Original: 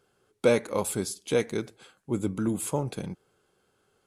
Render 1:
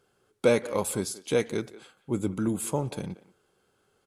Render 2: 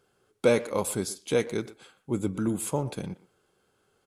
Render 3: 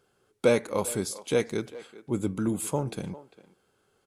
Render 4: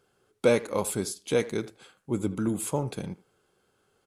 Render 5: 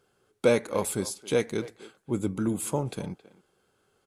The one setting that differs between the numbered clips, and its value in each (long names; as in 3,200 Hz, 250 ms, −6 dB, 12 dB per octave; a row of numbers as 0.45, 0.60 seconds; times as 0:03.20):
far-end echo of a speakerphone, delay time: 180, 120, 400, 80, 270 milliseconds